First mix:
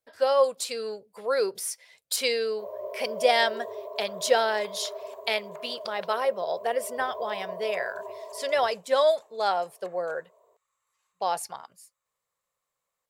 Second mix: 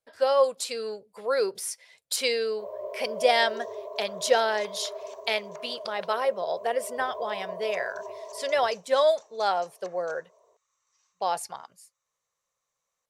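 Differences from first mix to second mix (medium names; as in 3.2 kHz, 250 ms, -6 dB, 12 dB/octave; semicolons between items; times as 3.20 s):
second sound: add resonant low-pass 5.8 kHz, resonance Q 8.7; master: add low-pass 12 kHz 12 dB/octave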